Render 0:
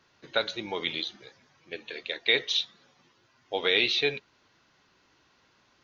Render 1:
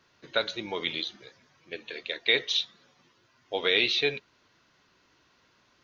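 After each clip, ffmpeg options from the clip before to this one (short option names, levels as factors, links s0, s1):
-af "bandreject=f=810:w=14"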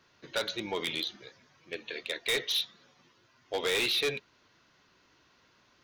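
-af "asoftclip=type=hard:threshold=0.0562"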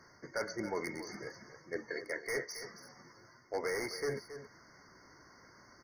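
-af "areverse,acompressor=threshold=0.00891:ratio=4,areverse,aecho=1:1:274:0.251,afftfilt=real='re*eq(mod(floor(b*sr/1024/2200),2),0)':imag='im*eq(mod(floor(b*sr/1024/2200),2),0)':win_size=1024:overlap=0.75,volume=2.24"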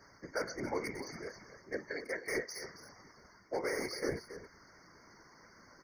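-af "afftfilt=real='hypot(re,im)*cos(2*PI*random(0))':imag='hypot(re,im)*sin(2*PI*random(1))':win_size=512:overlap=0.75,volume=2"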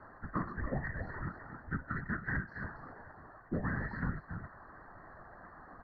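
-af "highpass=f=270:t=q:w=0.5412,highpass=f=270:t=q:w=1.307,lowpass=f=2600:t=q:w=0.5176,lowpass=f=2600:t=q:w=0.7071,lowpass=f=2600:t=q:w=1.932,afreqshift=-310,acompressor=threshold=0.00562:ratio=2,volume=2.51" -ar 44100 -c:a ac3 -b:a 32k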